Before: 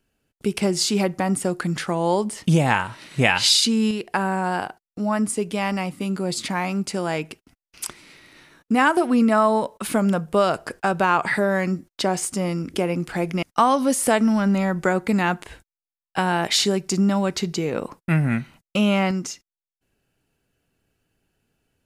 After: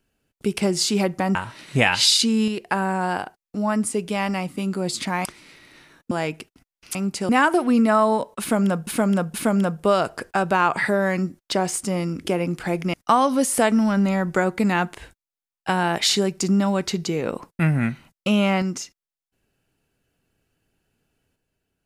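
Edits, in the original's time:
1.35–2.78 cut
6.68–7.02 swap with 7.86–8.72
9.83–10.3 loop, 3 plays

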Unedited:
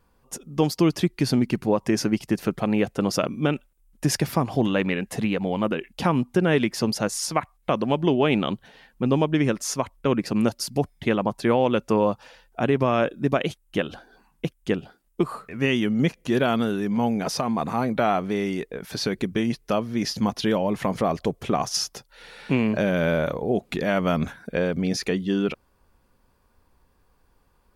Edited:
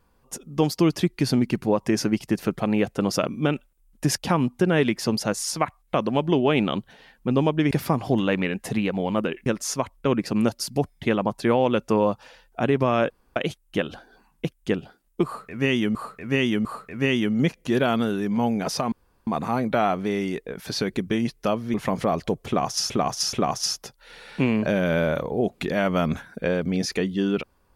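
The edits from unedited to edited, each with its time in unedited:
4.18–5.93 move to 9.46
13.1–13.36 room tone
15.25–15.95 loop, 3 plays
17.52 insert room tone 0.35 s
19.99–20.71 cut
21.44–21.87 loop, 3 plays

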